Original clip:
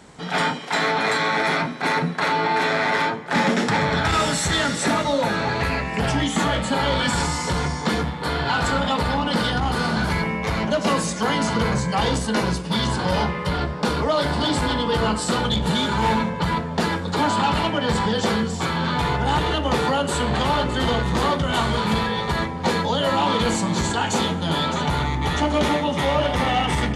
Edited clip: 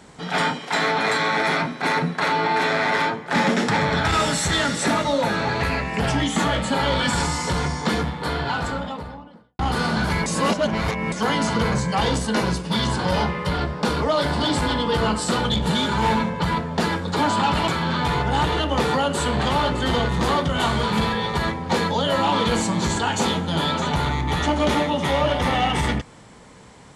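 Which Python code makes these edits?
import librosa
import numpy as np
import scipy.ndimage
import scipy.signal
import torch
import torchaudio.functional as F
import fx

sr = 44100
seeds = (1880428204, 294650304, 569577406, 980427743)

y = fx.studio_fade_out(x, sr, start_s=8.08, length_s=1.51)
y = fx.edit(y, sr, fx.reverse_span(start_s=10.26, length_s=0.86),
    fx.cut(start_s=17.68, length_s=0.94), tone=tone)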